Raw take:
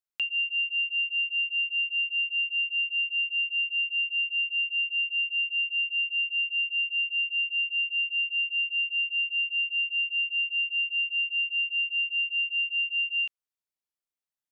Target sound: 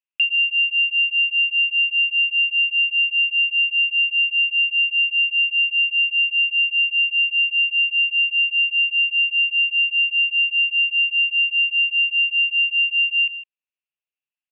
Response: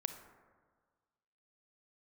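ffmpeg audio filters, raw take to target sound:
-filter_complex "[0:a]lowpass=f=2700:t=q:w=10,asplit=2[s0][s1];[s1]adelay=157.4,volume=0.2,highshelf=f=4000:g=-3.54[s2];[s0][s2]amix=inputs=2:normalize=0,volume=0.398"

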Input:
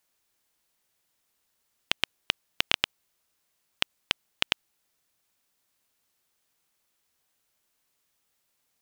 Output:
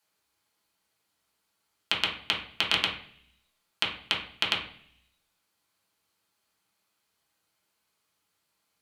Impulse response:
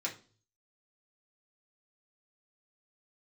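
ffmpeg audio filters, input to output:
-filter_complex "[1:a]atrim=start_sample=2205,asetrate=26019,aresample=44100[s0];[0:a][s0]afir=irnorm=-1:irlink=0,volume=0.631"

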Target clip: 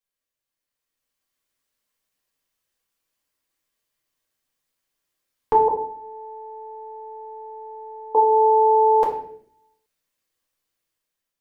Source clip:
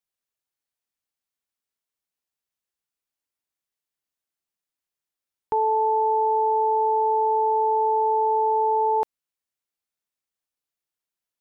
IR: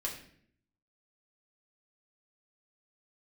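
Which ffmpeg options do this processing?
-filter_complex "[0:a]asettb=1/sr,asplit=3[s0][s1][s2];[s0]atrim=end=5.684[s3];[s1]atrim=start=5.68:end=8.15,asetpts=PTS-STARTPTS,afade=t=in:d=0.004:c=qsin,afade=t=out:st=2.466:d=0.004:c=qsin,agate=range=0.0224:threshold=0.447:ratio=3:detection=peak[s4];[s2]atrim=start=8.146[s5];[s3][s4]acrossfade=d=0.004:c1=hsin:c2=qsin[s6];[s6][s5]acrossfade=d=0.004:c1=qsin:c2=hsin,dynaudnorm=f=390:g=5:m=2.66[s7];[1:a]atrim=start_sample=2205[s8];[s7][s8]afir=irnorm=-1:irlink=0"

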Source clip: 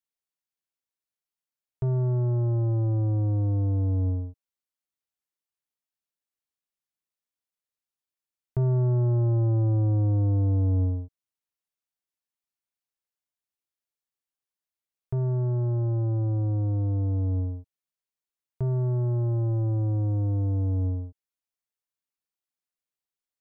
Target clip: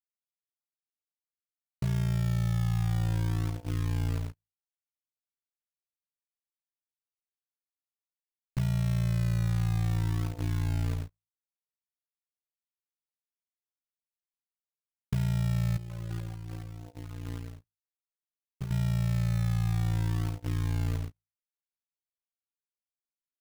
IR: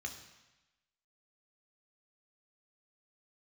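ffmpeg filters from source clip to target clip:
-filter_complex "[0:a]bandreject=f=50:t=h:w=6,bandreject=f=100:t=h:w=6,bandreject=f=150:t=h:w=6,bandreject=f=200:t=h:w=6,bandreject=f=250:t=h:w=6,bandreject=f=300:t=h:w=6,agate=range=0.0794:threshold=0.0158:ratio=16:detection=peak,equalizer=f=83:t=o:w=1.4:g=-5.5,aecho=1:1:6.8:0.5,asubboost=boost=7.5:cutoff=130,acompressor=threshold=0.0708:ratio=8,asettb=1/sr,asplit=3[s0][s1][s2];[s0]atrim=end=15.774[s3];[s1]atrim=start=15.77:end=18.71,asetpts=PTS-STARTPTS,afade=t=in:d=0.004:c=qsin,afade=t=out:st=2.936:d=0.004:c=qsin,flanger=delay=3.9:depth=2.1:regen=10:speed=1.3:shape=triangular[s4];[s2]atrim=start=18.706[s5];[s3][s4]acrossfade=d=0.004:c1=hsin:c2=qsin[s6];[s6][s5]acrossfade=d=0.004:c1=qsin:c2=hsin,acrusher=bits=3:mode=log:mix=0:aa=0.000001,tremolo=f=57:d=0.889"

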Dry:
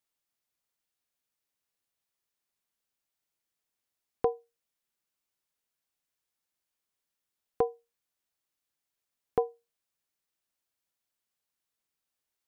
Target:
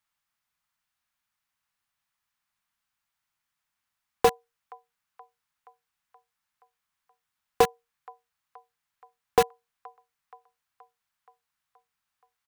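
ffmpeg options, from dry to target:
-filter_complex "[0:a]equalizer=f=1100:t=o:w=2.6:g=11,acrossover=split=230|750[s0][s1][s2];[s0]acontrast=29[s3];[s1]acrusher=bits=3:mix=0:aa=0.000001[s4];[s2]aecho=1:1:475|950|1425|1900|2375|2850:0.141|0.0848|0.0509|0.0305|0.0183|0.011[s5];[s3][s4][s5]amix=inputs=3:normalize=0"

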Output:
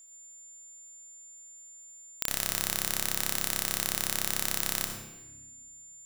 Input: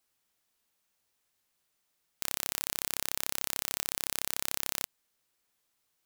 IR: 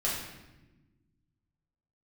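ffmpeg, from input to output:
-filter_complex "[0:a]acrusher=bits=11:mix=0:aa=0.000001,aeval=exprs='val(0)+0.00224*sin(2*PI*7200*n/s)':c=same,asplit=2[s0][s1];[1:a]atrim=start_sample=2205,lowshelf=f=390:g=7.5,adelay=59[s2];[s1][s2]afir=irnorm=-1:irlink=0,volume=0.266[s3];[s0][s3]amix=inputs=2:normalize=0,volume=1.33"

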